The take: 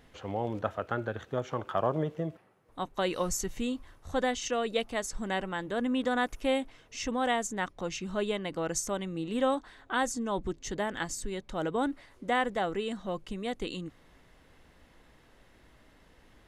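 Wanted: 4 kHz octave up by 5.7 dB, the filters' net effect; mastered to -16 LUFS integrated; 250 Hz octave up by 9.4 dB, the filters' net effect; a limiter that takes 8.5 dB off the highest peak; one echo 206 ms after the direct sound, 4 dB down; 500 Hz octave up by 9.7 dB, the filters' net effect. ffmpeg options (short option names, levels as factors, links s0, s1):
-af "equalizer=f=250:t=o:g=8.5,equalizer=f=500:t=o:g=9,equalizer=f=4000:t=o:g=7.5,alimiter=limit=0.168:level=0:latency=1,aecho=1:1:206:0.631,volume=2.99"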